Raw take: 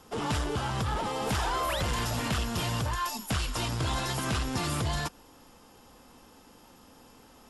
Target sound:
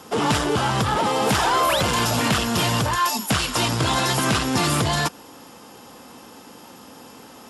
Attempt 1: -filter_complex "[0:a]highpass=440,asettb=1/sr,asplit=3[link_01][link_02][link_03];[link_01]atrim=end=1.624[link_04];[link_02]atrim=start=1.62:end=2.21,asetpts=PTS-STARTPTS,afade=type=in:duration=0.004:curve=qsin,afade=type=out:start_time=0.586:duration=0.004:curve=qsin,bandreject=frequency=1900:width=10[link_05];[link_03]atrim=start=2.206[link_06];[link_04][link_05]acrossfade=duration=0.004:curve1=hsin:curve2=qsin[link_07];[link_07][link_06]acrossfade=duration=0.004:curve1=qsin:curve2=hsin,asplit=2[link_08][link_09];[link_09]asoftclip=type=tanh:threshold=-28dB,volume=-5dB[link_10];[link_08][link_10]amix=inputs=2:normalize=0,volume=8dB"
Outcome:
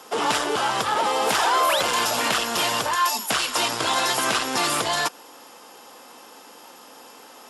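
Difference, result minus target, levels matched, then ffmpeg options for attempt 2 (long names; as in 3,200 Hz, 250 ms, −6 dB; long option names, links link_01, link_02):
125 Hz band −16.5 dB
-filter_complex "[0:a]highpass=130,asettb=1/sr,asplit=3[link_01][link_02][link_03];[link_01]atrim=end=1.624[link_04];[link_02]atrim=start=1.62:end=2.21,asetpts=PTS-STARTPTS,afade=type=in:duration=0.004:curve=qsin,afade=type=out:start_time=0.586:duration=0.004:curve=qsin,bandreject=frequency=1900:width=10[link_05];[link_03]atrim=start=2.206[link_06];[link_04][link_05]acrossfade=duration=0.004:curve1=hsin:curve2=qsin[link_07];[link_07][link_06]acrossfade=duration=0.004:curve1=qsin:curve2=hsin,asplit=2[link_08][link_09];[link_09]asoftclip=type=tanh:threshold=-28dB,volume=-5dB[link_10];[link_08][link_10]amix=inputs=2:normalize=0,volume=8dB"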